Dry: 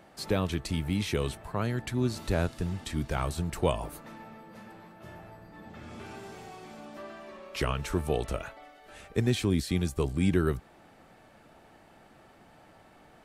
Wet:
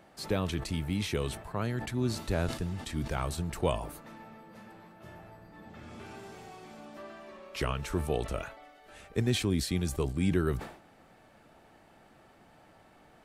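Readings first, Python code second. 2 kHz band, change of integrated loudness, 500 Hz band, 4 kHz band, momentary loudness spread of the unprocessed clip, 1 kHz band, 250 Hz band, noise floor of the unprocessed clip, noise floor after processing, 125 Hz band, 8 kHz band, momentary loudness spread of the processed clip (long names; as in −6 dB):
−1.5 dB, −2.0 dB, −2.0 dB, 0.0 dB, 20 LU, −2.0 dB, −2.0 dB, −57 dBFS, −60 dBFS, −2.0 dB, +0.5 dB, 21 LU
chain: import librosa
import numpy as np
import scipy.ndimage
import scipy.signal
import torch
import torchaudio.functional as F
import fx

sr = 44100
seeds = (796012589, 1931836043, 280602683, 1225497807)

y = fx.sustainer(x, sr, db_per_s=100.0)
y = F.gain(torch.from_numpy(y), -2.5).numpy()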